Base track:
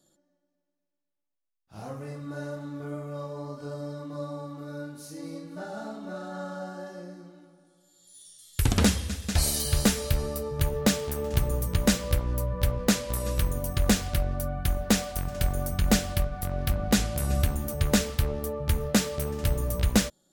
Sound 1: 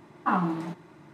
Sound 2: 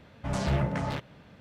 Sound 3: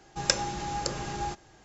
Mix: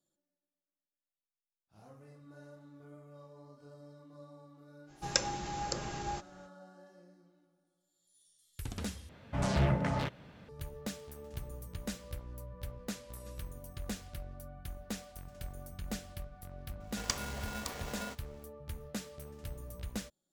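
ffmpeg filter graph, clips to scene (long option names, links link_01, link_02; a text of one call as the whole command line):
ffmpeg -i bed.wav -i cue0.wav -i cue1.wav -i cue2.wav -filter_complex "[3:a]asplit=2[link_01][link_02];[0:a]volume=-17.5dB[link_03];[link_02]aeval=exprs='val(0)*sgn(sin(2*PI*610*n/s))':channel_layout=same[link_04];[link_03]asplit=2[link_05][link_06];[link_05]atrim=end=9.094[link_07];[2:a]atrim=end=1.4,asetpts=PTS-STARTPTS,volume=-1.5dB[link_08];[link_06]atrim=start=10.486[link_09];[link_01]atrim=end=1.64,asetpts=PTS-STARTPTS,volume=-5dB,afade=type=in:duration=0.05,afade=type=out:start_time=1.59:duration=0.05,adelay=4860[link_10];[link_04]atrim=end=1.64,asetpts=PTS-STARTPTS,volume=-9.5dB,afade=type=in:duration=0.004:curve=hsin,afade=type=out:start_time=1.636:duration=0.004:curve=hsin,adelay=16800[link_11];[link_07][link_08]acrossfade=duration=0.004:curve1=hsin:curve2=hsin[link_12];[link_12][link_09]acrossfade=duration=0.004:curve1=hsin:curve2=hsin[link_13];[link_13][link_10][link_11]amix=inputs=3:normalize=0" out.wav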